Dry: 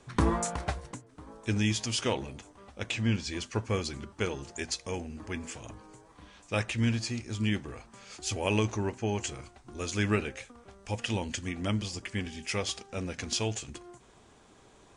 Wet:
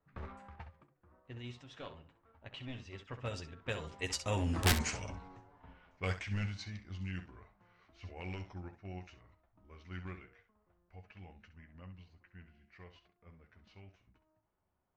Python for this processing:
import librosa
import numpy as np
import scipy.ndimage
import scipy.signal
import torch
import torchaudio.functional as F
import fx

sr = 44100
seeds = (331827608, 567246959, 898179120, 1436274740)

p1 = np.minimum(x, 2.0 * 10.0 ** (-22.5 / 20.0) - x)
p2 = fx.doppler_pass(p1, sr, speed_mps=43, closest_m=7.6, pass_at_s=4.64)
p3 = fx.lowpass(p2, sr, hz=3500.0, slope=6)
p4 = fx.peak_eq(p3, sr, hz=330.0, db=-7.0, octaves=1.9)
p5 = fx.level_steps(p4, sr, step_db=10)
p6 = p4 + (p5 * 10.0 ** (1.0 / 20.0))
p7 = (np.mod(10.0 ** (28.0 / 20.0) * p6 + 1.0, 2.0) - 1.0) / 10.0 ** (28.0 / 20.0)
p8 = p7 + fx.room_early_taps(p7, sr, ms=(11, 66), db=(-8.0, -11.0), dry=0)
p9 = fx.env_lowpass(p8, sr, base_hz=1600.0, full_db=-40.0)
y = p9 * 10.0 ** (7.0 / 20.0)